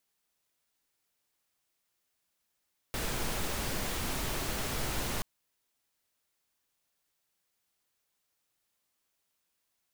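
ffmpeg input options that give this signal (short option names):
-f lavfi -i "anoisesrc=c=pink:a=0.108:d=2.28:r=44100:seed=1"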